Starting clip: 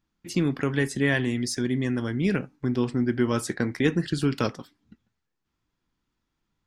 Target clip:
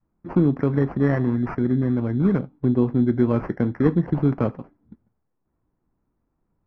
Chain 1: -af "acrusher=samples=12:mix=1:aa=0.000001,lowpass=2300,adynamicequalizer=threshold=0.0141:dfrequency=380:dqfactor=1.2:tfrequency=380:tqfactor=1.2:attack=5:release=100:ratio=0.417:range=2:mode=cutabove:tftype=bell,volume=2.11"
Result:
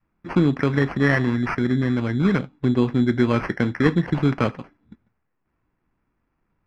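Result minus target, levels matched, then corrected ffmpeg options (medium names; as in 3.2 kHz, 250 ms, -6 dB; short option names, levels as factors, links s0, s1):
2 kHz band +11.0 dB
-af "acrusher=samples=12:mix=1:aa=0.000001,lowpass=860,adynamicequalizer=threshold=0.0141:dfrequency=380:dqfactor=1.2:tfrequency=380:tqfactor=1.2:attack=5:release=100:ratio=0.417:range=2:mode=cutabove:tftype=bell,volume=2.11"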